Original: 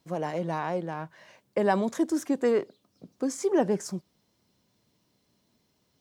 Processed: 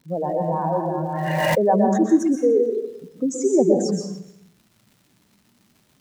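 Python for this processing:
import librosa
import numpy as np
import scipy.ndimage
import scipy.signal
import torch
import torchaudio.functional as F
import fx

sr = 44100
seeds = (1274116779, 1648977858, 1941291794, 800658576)

p1 = fx.spec_expand(x, sr, power=2.4)
p2 = fx.dmg_crackle(p1, sr, seeds[0], per_s=240.0, level_db=-52.0)
p3 = p2 + fx.echo_single(p2, sr, ms=296, db=-22.0, dry=0)
p4 = fx.rev_plate(p3, sr, seeds[1], rt60_s=0.68, hf_ratio=0.8, predelay_ms=110, drr_db=2.0)
p5 = fx.pre_swell(p4, sr, db_per_s=20.0, at=(0.97, 1.63))
y = p5 * librosa.db_to_amplitude(6.0)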